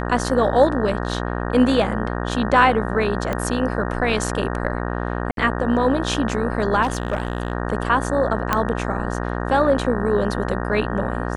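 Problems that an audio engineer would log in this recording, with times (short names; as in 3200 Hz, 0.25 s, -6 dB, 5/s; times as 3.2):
buzz 60 Hz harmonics 31 -25 dBFS
3.33 pop -11 dBFS
5.31–5.37 gap 62 ms
6.82–7.52 clipped -16 dBFS
8.53 pop -4 dBFS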